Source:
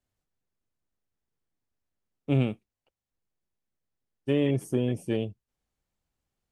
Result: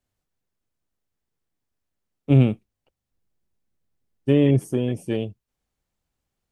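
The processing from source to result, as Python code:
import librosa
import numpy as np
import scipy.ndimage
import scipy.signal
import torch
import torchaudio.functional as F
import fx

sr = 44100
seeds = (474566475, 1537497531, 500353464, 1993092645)

y = fx.low_shelf(x, sr, hz=380.0, db=7.5, at=(2.3, 4.61))
y = y * 10.0 ** (3.0 / 20.0)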